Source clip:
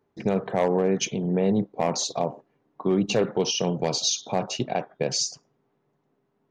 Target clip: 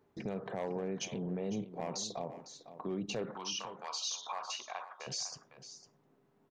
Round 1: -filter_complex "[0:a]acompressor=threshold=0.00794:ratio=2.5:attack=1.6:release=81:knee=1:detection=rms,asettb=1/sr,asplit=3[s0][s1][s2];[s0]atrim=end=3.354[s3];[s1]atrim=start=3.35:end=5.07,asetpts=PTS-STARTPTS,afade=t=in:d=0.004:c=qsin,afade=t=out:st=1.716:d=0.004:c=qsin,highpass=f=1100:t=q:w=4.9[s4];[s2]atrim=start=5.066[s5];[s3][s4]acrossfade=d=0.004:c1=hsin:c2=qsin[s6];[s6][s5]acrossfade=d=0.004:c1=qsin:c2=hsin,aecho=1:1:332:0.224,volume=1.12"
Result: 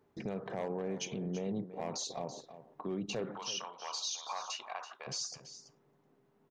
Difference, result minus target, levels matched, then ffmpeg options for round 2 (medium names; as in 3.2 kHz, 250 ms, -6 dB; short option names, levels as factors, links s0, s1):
echo 172 ms early
-filter_complex "[0:a]acompressor=threshold=0.00794:ratio=2.5:attack=1.6:release=81:knee=1:detection=rms,asettb=1/sr,asplit=3[s0][s1][s2];[s0]atrim=end=3.354[s3];[s1]atrim=start=3.35:end=5.07,asetpts=PTS-STARTPTS,afade=t=in:d=0.004:c=qsin,afade=t=out:st=1.716:d=0.004:c=qsin,highpass=f=1100:t=q:w=4.9[s4];[s2]atrim=start=5.066[s5];[s3][s4]acrossfade=d=0.004:c1=hsin:c2=qsin[s6];[s6][s5]acrossfade=d=0.004:c1=qsin:c2=hsin,aecho=1:1:504:0.224,volume=1.12"